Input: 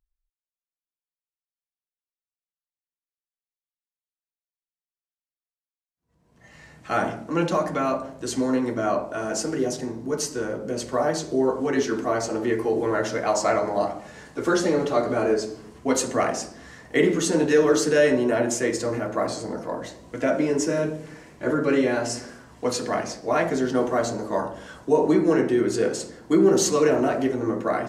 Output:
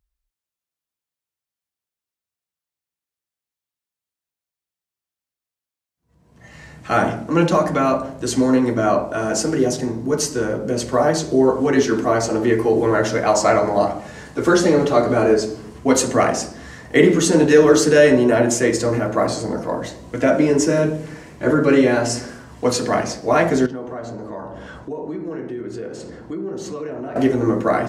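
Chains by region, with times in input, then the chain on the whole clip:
0:23.66–0:27.16: low-pass filter 2,300 Hz 6 dB per octave + downward compressor 3 to 1, threshold −38 dBFS
whole clip: high-pass filter 64 Hz; low-shelf EQ 100 Hz +10.5 dB; level +6 dB

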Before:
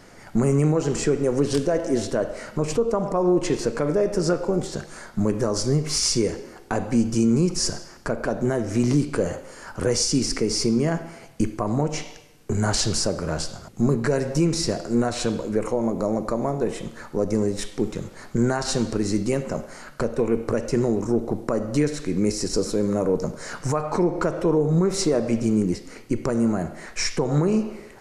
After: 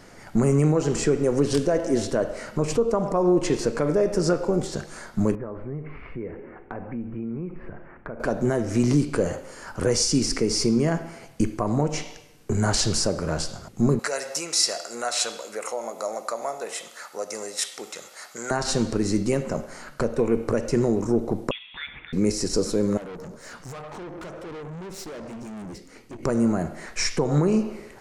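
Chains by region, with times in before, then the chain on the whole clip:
0:05.35–0:08.20: Butterworth low-pass 2,400 Hz 48 dB per octave + downward compressor 2 to 1, threshold −38 dBFS
0:13.99–0:18.51: high-pass filter 720 Hz + high-shelf EQ 3,200 Hz +8 dB + comb filter 1.5 ms, depth 30%
0:21.51–0:22.13: high-pass filter 1,200 Hz + voice inversion scrambler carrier 3,900 Hz + parametric band 2,200 Hz +4 dB 0.26 octaves
0:22.97–0:26.23: flanger 2 Hz, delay 3.2 ms, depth 3.2 ms, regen +78% + tube saturation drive 35 dB, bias 0.25
whole clip: no processing

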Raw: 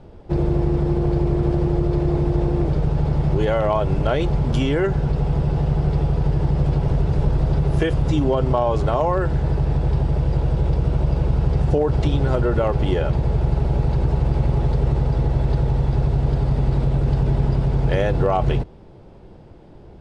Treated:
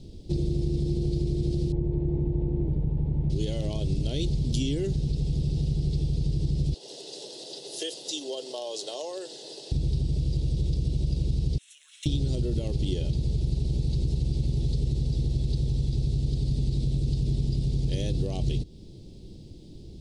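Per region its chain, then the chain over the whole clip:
0:01.72–0:03.30: low-pass filter 1,900 Hz 24 dB per octave + parametric band 920 Hz +11.5 dB 0.33 octaves
0:06.74–0:09.72: high-pass filter 490 Hz 24 dB per octave + notch filter 2,300 Hz, Q 5.1
0:11.58–0:12.06: Butterworth high-pass 1,100 Hz 48 dB per octave + phaser with its sweep stopped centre 2,000 Hz, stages 4 + hard clipping −28.5 dBFS
whole clip: drawn EQ curve 310 Hz 0 dB, 1,300 Hz −30 dB, 4,000 Hz +11 dB; downward compressor 2 to 1, threshold −28 dBFS

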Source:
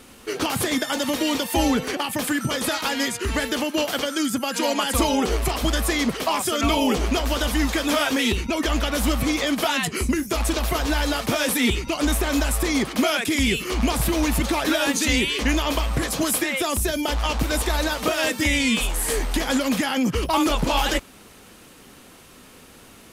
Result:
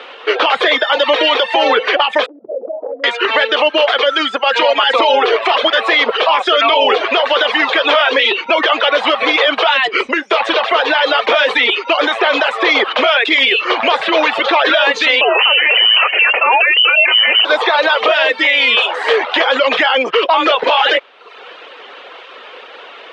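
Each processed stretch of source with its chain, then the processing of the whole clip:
0:02.26–0:03.04: Chebyshev low-pass filter 650 Hz, order 5 + mains-hum notches 50/100/150/200/250 Hz + downward compressor 12 to 1, threshold −33 dBFS
0:15.21–0:17.45: high-shelf EQ 2,300 Hz +5.5 dB + voice inversion scrambler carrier 3,000 Hz
whole clip: elliptic band-pass filter 470–3,400 Hz, stop band 60 dB; reverb reduction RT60 0.71 s; boost into a limiter +21 dB; level −2 dB

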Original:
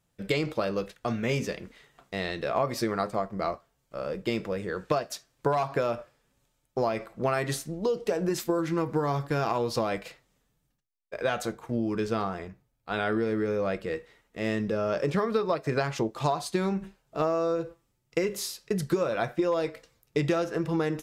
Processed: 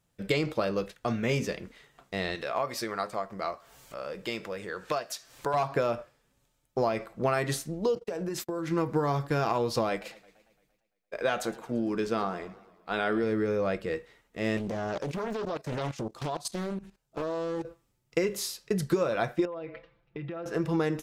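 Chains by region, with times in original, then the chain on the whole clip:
0:02.35–0:05.54: low-shelf EQ 450 Hz −11.5 dB + upward compression, threshold −34 dBFS
0:07.95–0:08.71: noise gate −39 dBFS, range −37 dB + downward compressor 4 to 1, threshold −30 dBFS
0:09.89–0:13.24: parametric band 89 Hz −12.5 dB 0.86 octaves + feedback echo with a swinging delay time 114 ms, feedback 60%, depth 159 cents, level −19.5 dB
0:14.57–0:17.65: bass and treble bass +3 dB, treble +6 dB + output level in coarse steps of 16 dB + highs frequency-modulated by the lows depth 0.9 ms
0:19.45–0:20.46: low-pass filter 3,000 Hz 24 dB per octave + comb filter 5.9 ms, depth 79% + downward compressor 8 to 1, threshold −35 dBFS
whole clip: no processing

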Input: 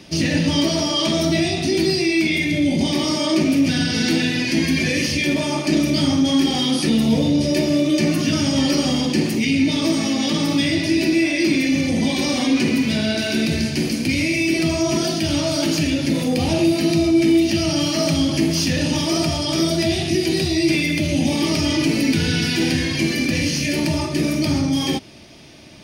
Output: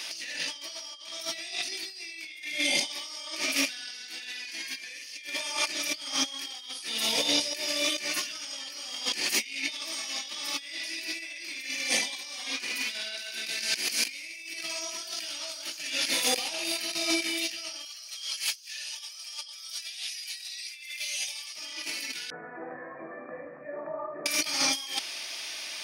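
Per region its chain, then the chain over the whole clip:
0:17.85–0:21.56: guitar amp tone stack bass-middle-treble 10-0-10 + comb filter 6.8 ms, depth 99%
0:22.30–0:24.26: Gaussian smoothing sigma 10 samples + spectral tilt +3 dB per octave + comb filter 1.7 ms, depth 49%
whole clip: high-pass filter 1,200 Hz 12 dB per octave; high-shelf EQ 4,300 Hz +5 dB; compressor whose output falls as the input rises −32 dBFS, ratio −0.5

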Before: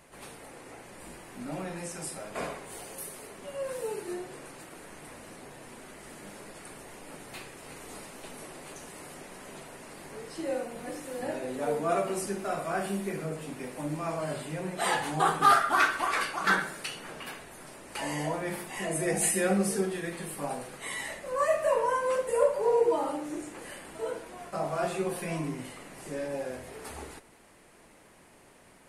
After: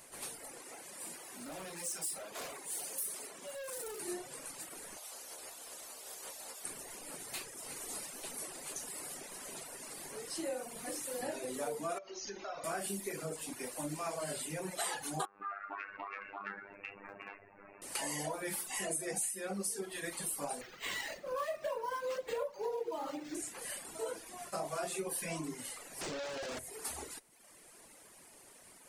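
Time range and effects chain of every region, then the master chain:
0:00.62–0:04.00: high-pass filter 150 Hz + mains-hum notches 50/100/150/200/250/300/350/400/450/500 Hz + hard clipping −39 dBFS
0:04.96–0:06.63: ceiling on every frequency bin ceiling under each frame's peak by 25 dB + parametric band 610 Hz +13.5 dB 2 octaves + stiff-string resonator 63 Hz, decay 0.24 s, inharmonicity 0.002
0:11.98–0:12.64: parametric band 170 Hz −9 dB 1.3 octaves + downward compressor 3 to 1, threshold −37 dBFS + linear-phase brick-wall low-pass 6,800 Hz
0:15.25–0:17.82: phases set to zero 100 Hz + linear-phase brick-wall low-pass 2,800 Hz + downward compressor 4 to 1, threshold −35 dBFS
0:20.61–0:23.35: dynamic equaliser 4,500 Hz, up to +3 dB, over −47 dBFS, Q 0.94 + linearly interpolated sample-rate reduction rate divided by 4×
0:26.01–0:26.59: sign of each sample alone + high-frequency loss of the air 120 metres
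whole clip: reverb reduction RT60 0.97 s; bass and treble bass −5 dB, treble +11 dB; downward compressor 12 to 1, threshold −32 dBFS; level −2 dB

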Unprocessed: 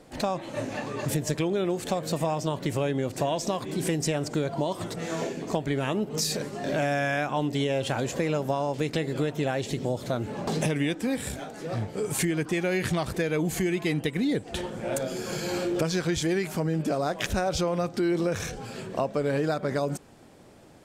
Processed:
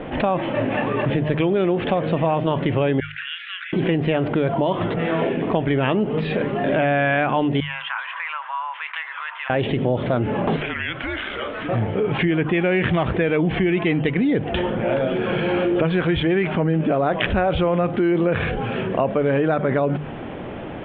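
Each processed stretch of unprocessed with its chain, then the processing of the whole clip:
0:03.00–0:03.73: Butterworth high-pass 1,400 Hz 96 dB per octave + high-frequency loss of the air 440 metres
0:07.60–0:09.50: Chebyshev high-pass filter 1,000 Hz, order 5 + head-to-tape spacing loss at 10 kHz 38 dB
0:10.56–0:11.69: Bessel high-pass filter 990 Hz + downward compressor 4 to 1, threshold −37 dBFS + frequency shifter −190 Hz
whole clip: Butterworth low-pass 3,300 Hz 72 dB per octave; mains-hum notches 50/100/150 Hz; envelope flattener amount 50%; level +6 dB

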